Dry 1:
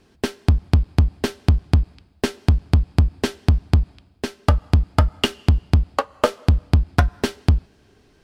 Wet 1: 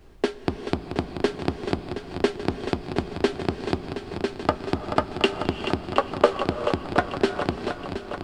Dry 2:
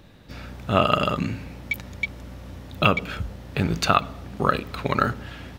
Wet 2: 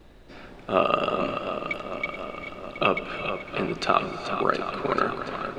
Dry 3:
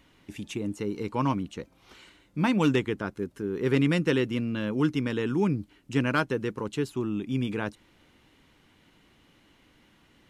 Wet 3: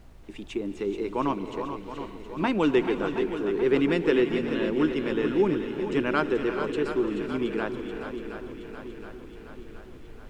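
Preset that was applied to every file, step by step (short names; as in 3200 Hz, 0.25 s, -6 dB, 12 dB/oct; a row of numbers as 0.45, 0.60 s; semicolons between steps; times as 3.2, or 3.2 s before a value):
gate with hold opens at -50 dBFS; high shelf 5600 Hz -8.5 dB; vibrato 0.92 Hz 40 cents; speaker cabinet 250–9200 Hz, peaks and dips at 370 Hz +7 dB, 690 Hz +3 dB, 6100 Hz -5 dB; added noise brown -47 dBFS; on a send: swung echo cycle 0.721 s, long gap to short 1.5:1, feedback 56%, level -9 dB; on the sum: non-linear reverb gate 0.45 s rising, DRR 10.5 dB; match loudness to -27 LUFS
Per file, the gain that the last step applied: -1.0, -2.5, +0.5 dB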